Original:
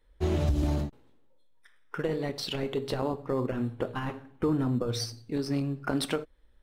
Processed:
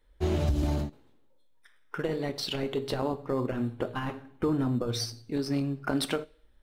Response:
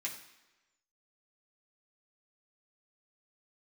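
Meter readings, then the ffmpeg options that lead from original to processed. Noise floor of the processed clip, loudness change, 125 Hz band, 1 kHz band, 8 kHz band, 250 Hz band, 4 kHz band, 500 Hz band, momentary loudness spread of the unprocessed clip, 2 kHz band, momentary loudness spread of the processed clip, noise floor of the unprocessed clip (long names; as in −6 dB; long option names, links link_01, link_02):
−61 dBFS, 0.0 dB, −0.5 dB, +0.5 dB, +1.0 dB, 0.0 dB, +1.5 dB, 0.0 dB, 7 LU, +0.5 dB, 7 LU, −61 dBFS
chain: -filter_complex "[0:a]asplit=2[link_01][link_02];[1:a]atrim=start_sample=2205,asetrate=79380,aresample=44100[link_03];[link_02][link_03]afir=irnorm=-1:irlink=0,volume=-7dB[link_04];[link_01][link_04]amix=inputs=2:normalize=0"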